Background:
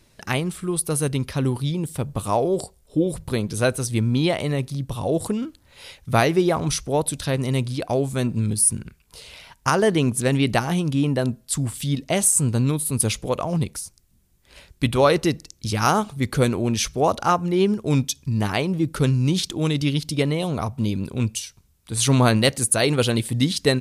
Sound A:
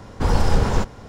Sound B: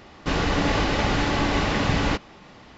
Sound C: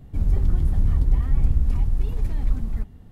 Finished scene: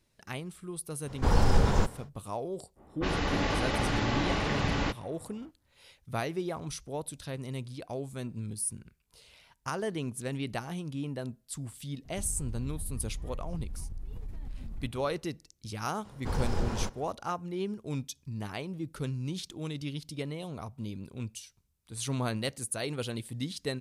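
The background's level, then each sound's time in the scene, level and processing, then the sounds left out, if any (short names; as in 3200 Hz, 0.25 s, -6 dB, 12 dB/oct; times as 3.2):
background -15 dB
1.02 add A -5.5 dB, fades 0.10 s
2.75 add B -7 dB, fades 0.05 s + low-pass opened by the level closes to 700 Hz, open at -19 dBFS
12.04 add C -8 dB + compressor, threshold -27 dBFS
16.05 add A -13 dB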